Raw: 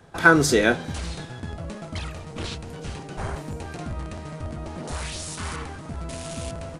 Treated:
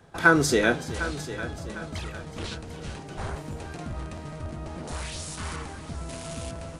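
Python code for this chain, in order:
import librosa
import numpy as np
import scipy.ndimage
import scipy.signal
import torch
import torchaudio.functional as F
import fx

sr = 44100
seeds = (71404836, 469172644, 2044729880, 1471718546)

y = fx.echo_heads(x, sr, ms=376, heads='first and second', feedback_pct=48, wet_db=-16)
y = y * 10.0 ** (-3.0 / 20.0)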